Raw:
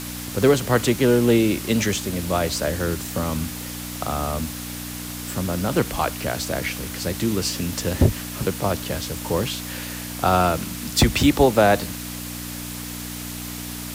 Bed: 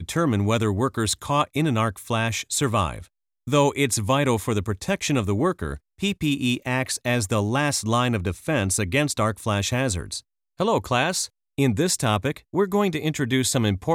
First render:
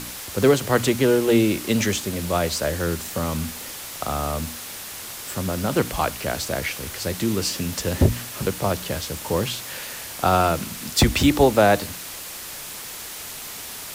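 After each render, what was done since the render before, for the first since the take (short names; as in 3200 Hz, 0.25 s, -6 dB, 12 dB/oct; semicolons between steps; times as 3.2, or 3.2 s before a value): de-hum 60 Hz, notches 5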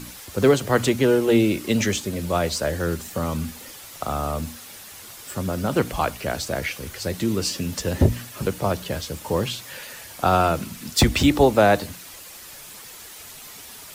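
denoiser 8 dB, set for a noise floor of -36 dBFS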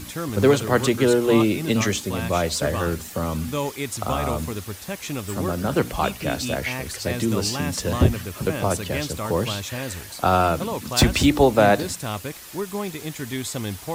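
add bed -7.5 dB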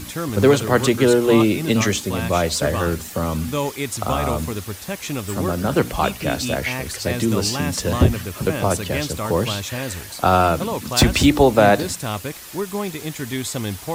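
gain +3 dB; limiter -3 dBFS, peak gain reduction 1.5 dB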